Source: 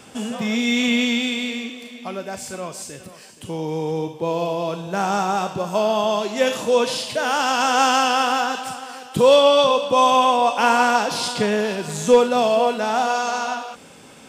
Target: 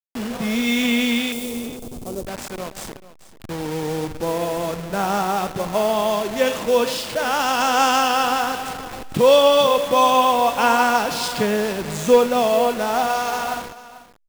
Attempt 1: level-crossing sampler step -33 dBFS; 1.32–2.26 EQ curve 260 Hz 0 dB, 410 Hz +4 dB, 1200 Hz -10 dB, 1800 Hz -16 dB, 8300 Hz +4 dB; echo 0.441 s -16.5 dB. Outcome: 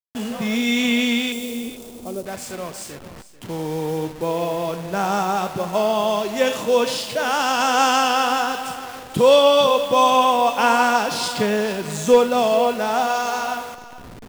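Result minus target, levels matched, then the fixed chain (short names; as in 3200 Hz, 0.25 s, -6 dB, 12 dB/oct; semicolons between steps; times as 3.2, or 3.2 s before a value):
level-crossing sampler: distortion -7 dB
level-crossing sampler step -26.5 dBFS; 1.32–2.26 EQ curve 260 Hz 0 dB, 410 Hz +4 dB, 1200 Hz -10 dB, 1800 Hz -16 dB, 8300 Hz +4 dB; echo 0.441 s -16.5 dB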